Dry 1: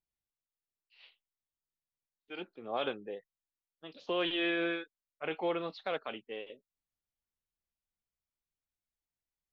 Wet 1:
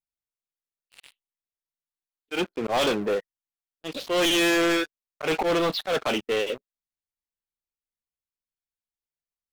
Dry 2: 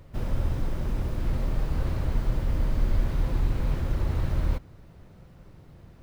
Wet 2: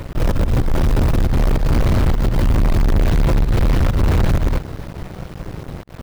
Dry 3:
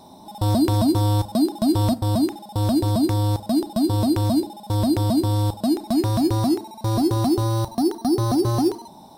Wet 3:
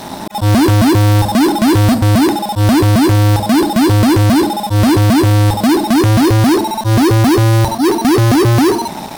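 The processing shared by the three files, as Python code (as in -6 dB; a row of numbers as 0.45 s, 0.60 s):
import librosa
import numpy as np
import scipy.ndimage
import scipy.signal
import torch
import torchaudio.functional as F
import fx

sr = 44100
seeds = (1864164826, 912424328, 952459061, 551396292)

y = fx.auto_swell(x, sr, attack_ms=109.0)
y = fx.leveller(y, sr, passes=5)
y = y * librosa.db_to_amplitude(3.0)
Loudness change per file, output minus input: +11.0 LU, +11.5 LU, +10.5 LU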